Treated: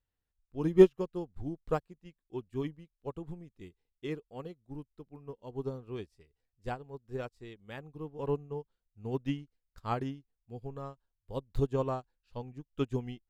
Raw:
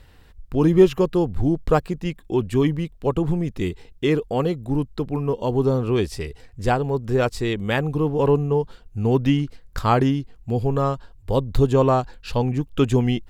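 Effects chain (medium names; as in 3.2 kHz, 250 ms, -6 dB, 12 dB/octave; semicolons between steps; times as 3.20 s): upward expansion 2.5:1, over -31 dBFS; trim -4 dB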